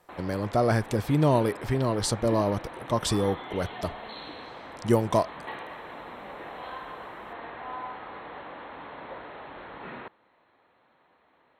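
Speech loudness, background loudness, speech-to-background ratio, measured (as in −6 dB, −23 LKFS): −27.0 LKFS, −40.5 LKFS, 13.5 dB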